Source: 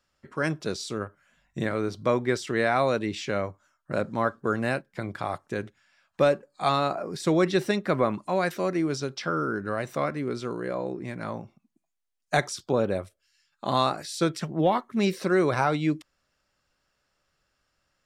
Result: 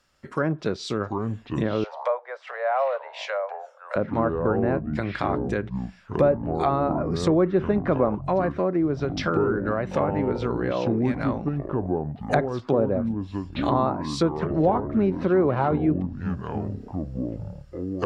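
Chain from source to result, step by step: treble ducked by the level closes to 980 Hz, closed at -23 dBFS; echoes that change speed 0.585 s, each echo -6 st, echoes 3, each echo -6 dB; in parallel at +2.5 dB: compressor, threshold -32 dBFS, peak gain reduction 14 dB; 1.84–3.96 on the sum: steep high-pass 520 Hz 72 dB/oct

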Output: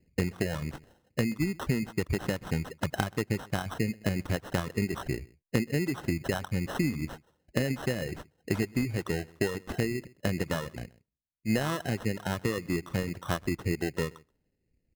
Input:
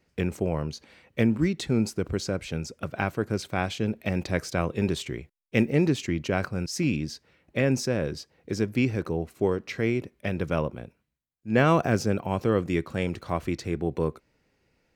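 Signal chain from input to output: compressor 16:1, threshold -28 dBFS, peak gain reduction 13.5 dB; outdoor echo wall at 22 m, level -14 dB; low-pass opened by the level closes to 1800 Hz, open at -27.5 dBFS; low shelf 450 Hz +6.5 dB; low-pass opened by the level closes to 390 Hz, open at -30 dBFS; reverb removal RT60 1.2 s; sample-and-hold 19×; dynamic EQ 1500 Hz, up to +4 dB, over -56 dBFS, Q 1.1

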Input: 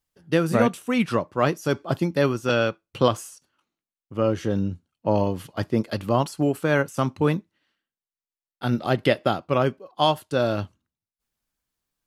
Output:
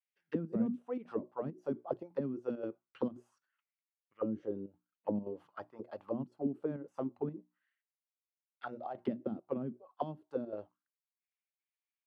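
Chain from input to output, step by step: notches 60/120/180/240/300/360 Hz; chopper 1.9 Hz, depth 60%, duty 85%; auto-wah 220–2300 Hz, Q 4.3, down, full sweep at -17.5 dBFS; gain -5 dB

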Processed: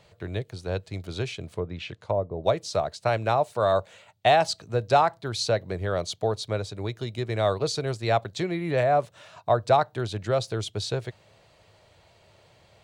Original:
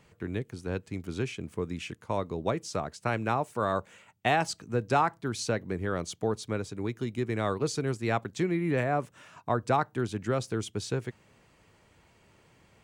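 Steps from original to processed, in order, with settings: fifteen-band EQ 100 Hz +6 dB, 250 Hz -7 dB, 630 Hz +11 dB, 4000 Hz +11 dB; 1.52–2.44 treble ducked by the level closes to 660 Hz, closed at -24 dBFS

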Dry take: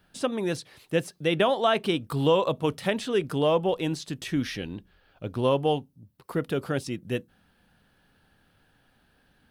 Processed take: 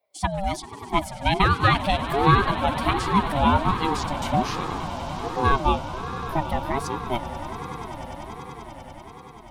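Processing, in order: per-bin expansion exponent 1.5; de-esser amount 80%; on a send: swelling echo 97 ms, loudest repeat 8, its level -17 dB; on the sum: ring modulator with a swept carrier 510 Hz, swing 25%, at 1.3 Hz; gain +8.5 dB

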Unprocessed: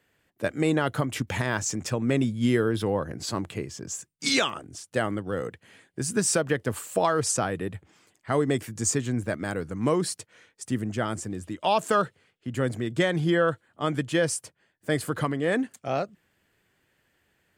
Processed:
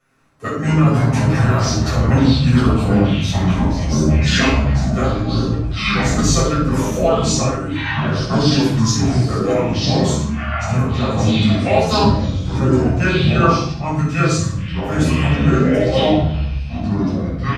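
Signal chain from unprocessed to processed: comb 7.4 ms, depth 86%; harmoniser -7 st -16 dB; flutter echo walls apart 8.7 m, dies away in 0.4 s; formant shift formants -4 st; echoes that change speed 80 ms, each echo -5 st, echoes 3; reverb RT60 0.50 s, pre-delay 6 ms, DRR -6 dB; gain -5 dB

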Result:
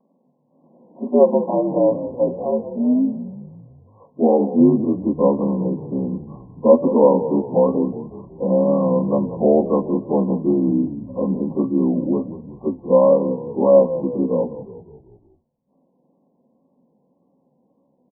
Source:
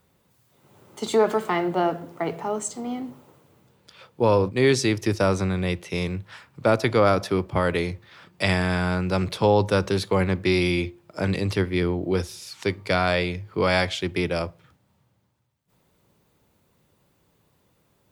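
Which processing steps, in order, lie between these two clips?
inharmonic rescaling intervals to 82%; FFT band-pass 140–1100 Hz; small resonant body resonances 250/540 Hz, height 15 dB, ringing for 85 ms; wow and flutter 66 cents; frequency-shifting echo 0.183 s, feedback 51%, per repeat -32 Hz, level -13 dB; gain +1.5 dB

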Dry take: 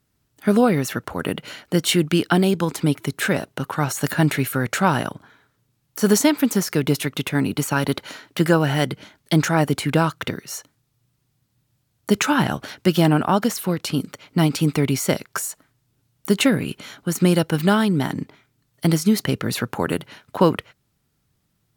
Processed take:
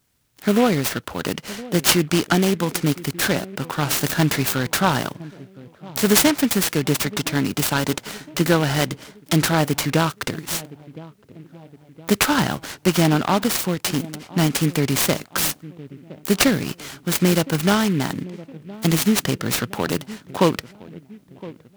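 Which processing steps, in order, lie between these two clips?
high shelf 4000 Hz +11 dB; on a send: dark delay 1.015 s, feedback 49%, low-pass 710 Hz, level -17.5 dB; on the sum: noise-modulated delay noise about 2000 Hz, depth 0.053 ms; gain -1 dB

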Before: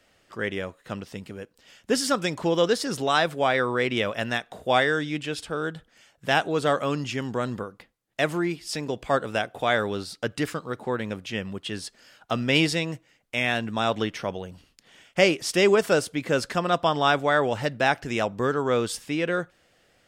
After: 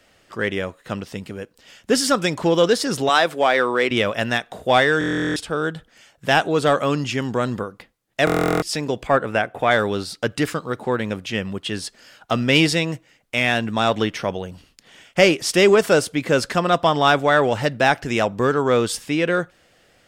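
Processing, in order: 3.09–3.91 HPF 250 Hz 12 dB/oct; in parallel at -8 dB: hard clip -18.5 dBFS, distortion -11 dB; 9.07–9.71 on the sum: resonant high shelf 2900 Hz -7 dB, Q 1.5; stuck buffer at 4.99/8.25, samples 1024, times 15; gain +3 dB

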